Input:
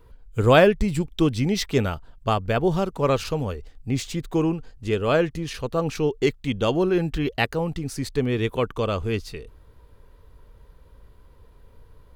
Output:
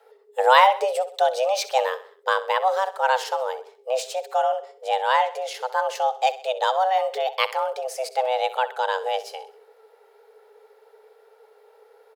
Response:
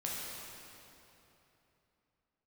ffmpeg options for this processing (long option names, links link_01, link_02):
-af "highpass=51,afreqshift=380,aecho=1:1:64|128|192|256:0.158|0.0729|0.0335|0.0154"